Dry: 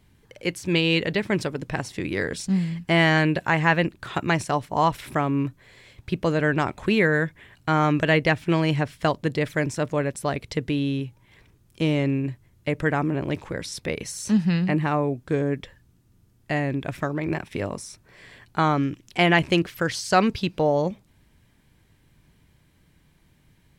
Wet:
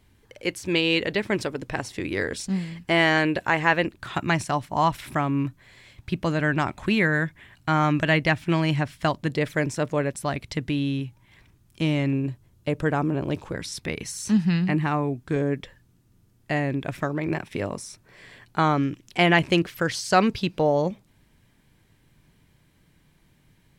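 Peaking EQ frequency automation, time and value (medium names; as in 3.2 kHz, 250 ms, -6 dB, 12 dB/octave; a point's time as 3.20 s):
peaking EQ -7.5 dB 0.5 oct
160 Hz
from 3.98 s 460 Hz
from 9.31 s 79 Hz
from 10.13 s 460 Hz
from 12.13 s 2 kHz
from 13.55 s 530 Hz
from 15.36 s 66 Hz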